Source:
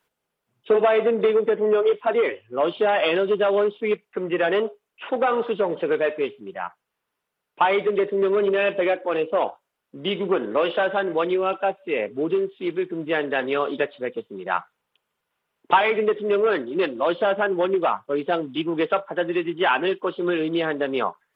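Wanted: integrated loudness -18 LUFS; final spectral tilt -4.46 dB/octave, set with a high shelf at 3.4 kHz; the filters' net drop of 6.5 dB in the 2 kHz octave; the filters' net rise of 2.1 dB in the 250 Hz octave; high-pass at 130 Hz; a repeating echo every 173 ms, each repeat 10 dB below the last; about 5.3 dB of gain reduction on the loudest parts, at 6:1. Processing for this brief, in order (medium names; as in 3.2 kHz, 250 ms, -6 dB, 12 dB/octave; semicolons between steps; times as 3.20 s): high-pass 130 Hz; peaking EQ 250 Hz +4 dB; peaking EQ 2 kHz -8 dB; treble shelf 3.4 kHz -3.5 dB; compression 6:1, threshold -20 dBFS; feedback delay 173 ms, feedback 32%, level -10 dB; trim +7.5 dB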